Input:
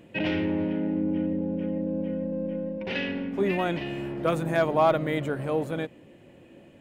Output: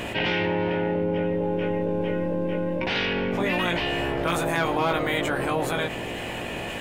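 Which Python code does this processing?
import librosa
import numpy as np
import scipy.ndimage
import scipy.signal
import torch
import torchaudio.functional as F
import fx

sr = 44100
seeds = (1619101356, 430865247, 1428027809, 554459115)

y = fx.spec_clip(x, sr, under_db=17)
y = fx.doubler(y, sr, ms=17.0, db=-3.0)
y = fx.env_flatten(y, sr, amount_pct=70)
y = y * 10.0 ** (-5.0 / 20.0)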